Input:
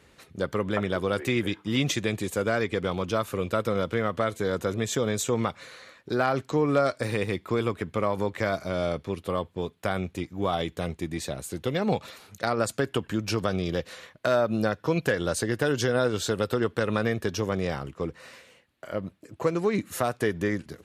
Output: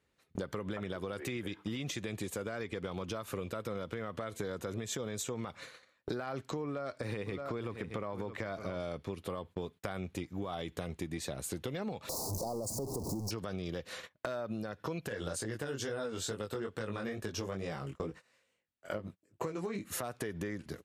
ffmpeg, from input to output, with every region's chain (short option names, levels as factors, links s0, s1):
-filter_complex "[0:a]asettb=1/sr,asplit=3[s0][s1][s2];[s0]atrim=end=6.644[s3];[s1]atrim=start=6.64:end=8.8,asetpts=PTS-STARTPTS,afade=t=in:d=0.004:c=qsin,afade=t=out:st=2.156:d=0.004:c=qsin,highshelf=f=5700:g=-9,aecho=1:1:621:0.2,atrim=end_sample=95256[s4];[s2]atrim=start=8.796[s5];[s3][s4]acrossfade=d=0.004:c1=hsin:c2=qsin[s6];[s6][s5]acrossfade=d=0.004:c1=qsin:c2=hsin,asettb=1/sr,asplit=3[s7][s8][s9];[s7]atrim=end=12.094[s10];[s8]atrim=start=12.09:end=13.31,asetpts=PTS-STARTPTS,afade=t=in:d=0.004:c=qsin,afade=t=out:st=1.216:d=0.004:c=qsin,aeval=exprs='val(0)+0.5*0.0596*sgn(val(0))':c=same,asuperstop=centerf=2200:order=12:qfactor=0.59[s11];[s9]atrim=start=13.306[s12];[s10][s11]acrossfade=d=0.004:c1=hsin:c2=qsin[s13];[s13][s12]acrossfade=d=0.004:c1=qsin:c2=hsin,asettb=1/sr,asplit=3[s14][s15][s16];[s14]atrim=end=15.094[s17];[s15]atrim=start=15.09:end=19.85,asetpts=PTS-STARTPTS,afade=t=in:d=0.004:c=qsin,afade=t=out:st=4.756:d=0.004:c=qsin,equalizer=f=7600:w=2.5:g=4.5,flanger=delay=18.5:depth=3.9:speed=2.3[s18];[s16]atrim=start=19.846[s19];[s17][s18]acrossfade=d=0.004:c1=hsin:c2=qsin[s20];[s20][s19]acrossfade=d=0.004:c1=qsin:c2=hsin,alimiter=limit=0.112:level=0:latency=1:release=86,agate=range=0.0398:threshold=0.00708:ratio=16:detection=peak,acompressor=threshold=0.00708:ratio=10,volume=2.51"